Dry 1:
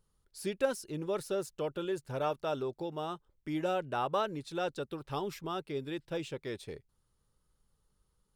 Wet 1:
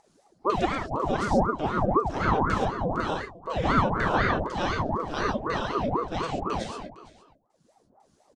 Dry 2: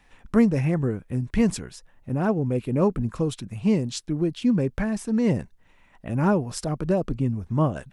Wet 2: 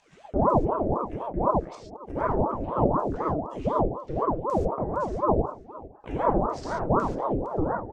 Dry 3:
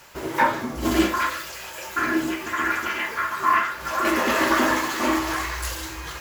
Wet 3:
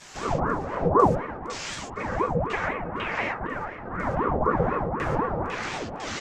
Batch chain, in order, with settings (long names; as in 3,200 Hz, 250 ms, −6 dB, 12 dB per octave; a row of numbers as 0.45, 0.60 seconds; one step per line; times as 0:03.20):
downward expander −44 dBFS
hum removal 69.51 Hz, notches 7
treble cut that deepens with the level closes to 470 Hz, closed at −19 dBFS
upward compression, threshold −41 dBFS
auto-filter low-pass square 2 Hz 510–6,700 Hz
single-tap delay 459 ms −19 dB
reverb whose tail is shaped and stops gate 160 ms flat, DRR −3 dB
ring modulator whose carrier an LFO sweeps 490 Hz, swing 70%, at 4 Hz
loudness normalisation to −27 LKFS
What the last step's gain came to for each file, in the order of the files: +6.0, −4.0, −0.5 decibels